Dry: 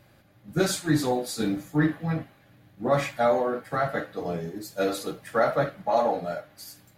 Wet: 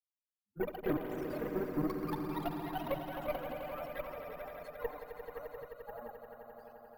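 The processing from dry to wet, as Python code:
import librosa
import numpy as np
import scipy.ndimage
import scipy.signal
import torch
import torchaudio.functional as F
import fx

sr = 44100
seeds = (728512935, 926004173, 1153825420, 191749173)

p1 = fx.bin_expand(x, sr, power=3.0)
p2 = fx.env_lowpass_down(p1, sr, base_hz=420.0, full_db=-27.5)
p3 = scipy.signal.sosfilt(scipy.signal.butter(2, 190.0, 'highpass', fs=sr, output='sos'), p2)
p4 = fx.high_shelf(p3, sr, hz=8400.0, db=-9.0)
p5 = fx.level_steps(p4, sr, step_db=15)
p6 = fx.cheby_harmonics(p5, sr, harmonics=(6,), levels_db=(-15,), full_scale_db=-22.5)
p7 = p6 + fx.echo_swell(p6, sr, ms=87, loudest=5, wet_db=-10, dry=0)
p8 = fx.echo_pitch(p7, sr, ms=148, semitones=4, count=3, db_per_echo=-3.0)
p9 = np.repeat(p8[::3], 3)[:len(p8)]
y = F.gain(torch.from_numpy(p9), -2.5).numpy()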